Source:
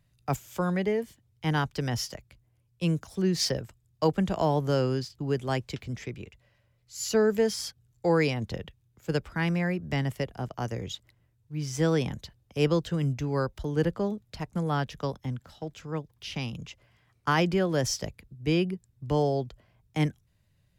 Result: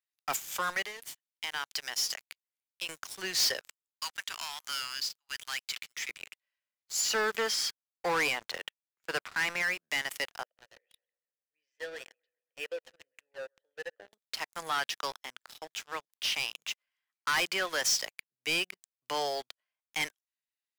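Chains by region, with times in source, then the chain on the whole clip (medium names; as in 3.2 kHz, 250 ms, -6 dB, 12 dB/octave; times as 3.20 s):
0.83–2.89 s: treble shelf 2.5 kHz +4.5 dB + compression 3:1, threshold -37 dBFS
3.61–6.09 s: Bessel high-pass 1.6 kHz, order 4 + hard clipper -38.5 dBFS
7.01–9.62 s: low-pass 2.1 kHz 6 dB/octave + waveshaping leveller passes 1
10.43–14.13 s: vowel filter e + treble shelf 3.2 kHz -8 dB + bucket-brigade echo 132 ms, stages 2048, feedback 55%, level -15 dB
whole clip: high-pass 1.4 kHz 12 dB/octave; waveshaping leveller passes 5; trim -7.5 dB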